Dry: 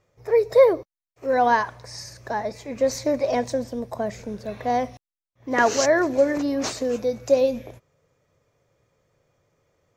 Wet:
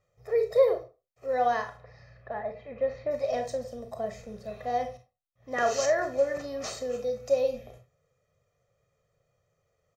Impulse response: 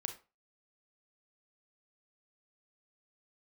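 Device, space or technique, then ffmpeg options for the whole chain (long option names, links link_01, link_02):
microphone above a desk: -filter_complex "[0:a]asplit=3[link_01][link_02][link_03];[link_01]afade=type=out:start_time=1.76:duration=0.02[link_04];[link_02]lowpass=frequency=2800:width=0.5412,lowpass=frequency=2800:width=1.3066,afade=type=in:start_time=1.76:duration=0.02,afade=type=out:start_time=3.1:duration=0.02[link_05];[link_03]afade=type=in:start_time=3.1:duration=0.02[link_06];[link_04][link_05][link_06]amix=inputs=3:normalize=0,aecho=1:1:1.6:0.71[link_07];[1:a]atrim=start_sample=2205[link_08];[link_07][link_08]afir=irnorm=-1:irlink=0,volume=-8.5dB"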